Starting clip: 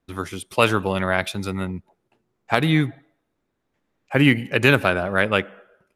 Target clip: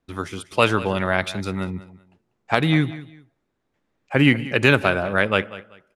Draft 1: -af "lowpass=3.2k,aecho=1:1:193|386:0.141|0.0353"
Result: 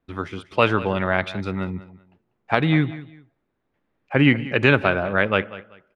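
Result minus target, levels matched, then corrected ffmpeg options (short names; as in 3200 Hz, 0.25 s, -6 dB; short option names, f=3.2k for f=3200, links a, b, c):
8000 Hz band -14.0 dB
-af "lowpass=9k,aecho=1:1:193|386:0.141|0.0353"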